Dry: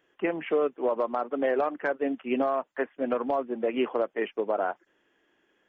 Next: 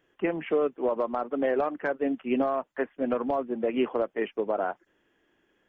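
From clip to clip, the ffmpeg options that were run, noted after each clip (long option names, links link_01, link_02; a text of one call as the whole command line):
ffmpeg -i in.wav -af "lowshelf=frequency=170:gain=11.5,volume=-1.5dB" out.wav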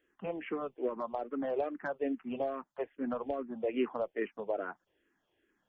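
ffmpeg -i in.wav -filter_complex "[0:a]asplit=2[link_01][link_02];[link_02]afreqshift=-2.4[link_03];[link_01][link_03]amix=inputs=2:normalize=1,volume=-4.5dB" out.wav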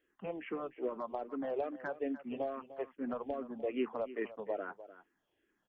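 ffmpeg -i in.wav -af "aecho=1:1:300:0.178,volume=-3dB" out.wav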